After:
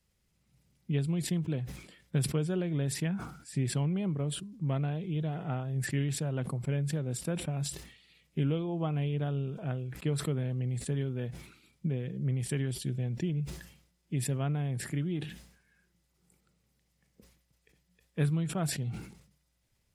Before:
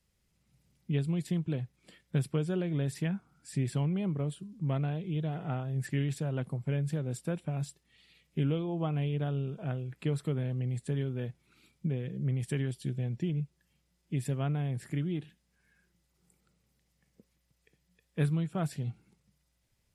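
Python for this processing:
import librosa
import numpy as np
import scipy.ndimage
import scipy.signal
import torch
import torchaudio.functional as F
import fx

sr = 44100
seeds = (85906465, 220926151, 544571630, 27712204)

y = fx.sustainer(x, sr, db_per_s=84.0)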